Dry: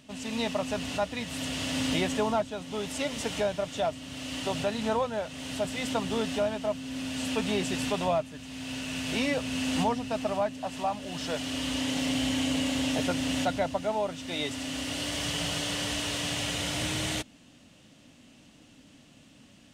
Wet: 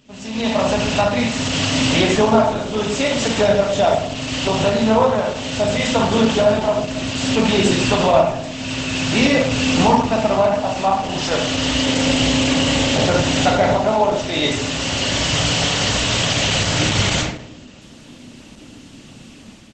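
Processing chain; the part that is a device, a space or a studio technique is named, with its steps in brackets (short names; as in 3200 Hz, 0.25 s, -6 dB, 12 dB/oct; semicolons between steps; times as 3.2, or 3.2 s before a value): speakerphone in a meeting room (reverb RT60 0.75 s, pre-delay 24 ms, DRR 0 dB; speakerphone echo 0.1 s, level -18 dB; AGC gain up to 9.5 dB; gain +2.5 dB; Opus 12 kbps 48000 Hz)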